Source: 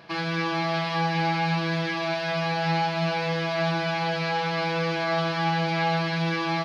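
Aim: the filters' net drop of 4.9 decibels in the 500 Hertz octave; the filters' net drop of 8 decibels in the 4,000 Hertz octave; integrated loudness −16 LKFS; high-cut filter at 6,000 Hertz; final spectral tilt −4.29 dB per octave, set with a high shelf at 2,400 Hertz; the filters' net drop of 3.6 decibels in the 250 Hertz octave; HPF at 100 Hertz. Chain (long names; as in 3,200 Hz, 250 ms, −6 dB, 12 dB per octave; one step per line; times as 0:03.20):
high-pass filter 100 Hz
low-pass filter 6,000 Hz
parametric band 250 Hz −5 dB
parametric band 500 Hz −5.5 dB
high-shelf EQ 2,400 Hz −4.5 dB
parametric band 4,000 Hz −5.5 dB
level +13.5 dB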